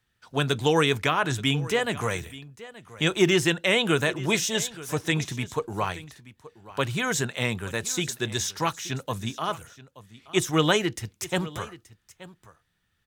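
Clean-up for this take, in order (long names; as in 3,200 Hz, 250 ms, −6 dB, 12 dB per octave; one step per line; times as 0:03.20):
echo removal 877 ms −18 dB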